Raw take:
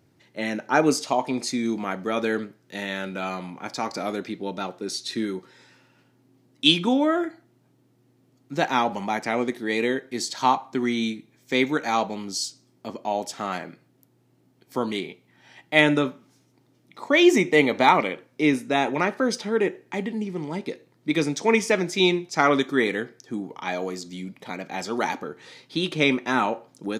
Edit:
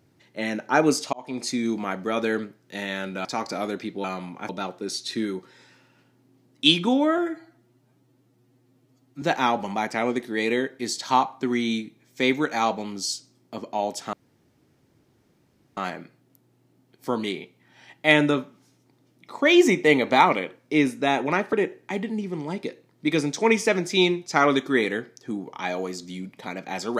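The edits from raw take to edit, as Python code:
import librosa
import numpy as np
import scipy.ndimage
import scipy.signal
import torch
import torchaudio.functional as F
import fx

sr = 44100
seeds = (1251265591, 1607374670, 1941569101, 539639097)

y = fx.edit(x, sr, fx.fade_in_span(start_s=1.13, length_s=0.36),
    fx.move(start_s=3.25, length_s=0.45, to_s=4.49),
    fx.stretch_span(start_s=7.18, length_s=1.36, factor=1.5),
    fx.insert_room_tone(at_s=13.45, length_s=1.64),
    fx.cut(start_s=19.21, length_s=0.35), tone=tone)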